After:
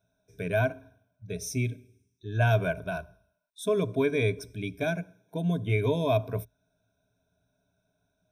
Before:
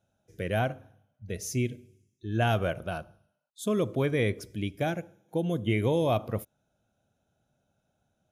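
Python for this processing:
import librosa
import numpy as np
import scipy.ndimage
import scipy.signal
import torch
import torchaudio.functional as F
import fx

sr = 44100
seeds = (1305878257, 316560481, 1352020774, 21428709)

y = fx.ripple_eq(x, sr, per_octave=1.6, db=16)
y = y * librosa.db_to_amplitude(-3.0)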